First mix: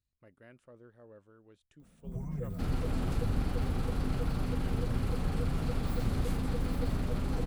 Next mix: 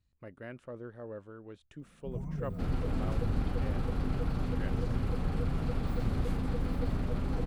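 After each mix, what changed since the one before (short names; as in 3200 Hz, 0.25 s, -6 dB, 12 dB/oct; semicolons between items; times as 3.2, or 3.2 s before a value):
speech +11.5 dB; master: add high shelf 4800 Hz -10 dB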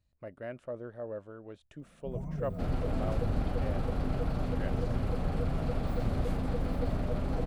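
master: add bell 630 Hz +9 dB 0.48 oct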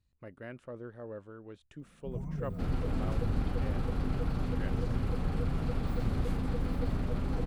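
master: add bell 630 Hz -9 dB 0.48 oct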